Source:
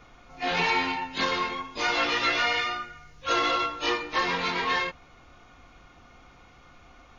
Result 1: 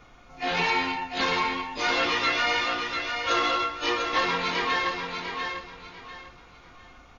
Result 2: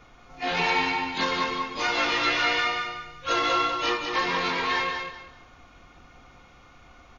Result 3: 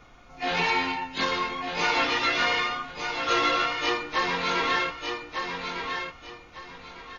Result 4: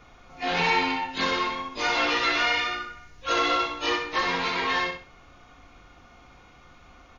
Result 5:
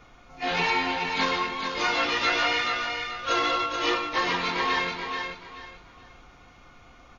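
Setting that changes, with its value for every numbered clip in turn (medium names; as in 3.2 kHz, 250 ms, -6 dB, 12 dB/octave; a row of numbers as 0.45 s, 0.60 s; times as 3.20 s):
feedback delay, time: 695 ms, 194 ms, 1202 ms, 64 ms, 432 ms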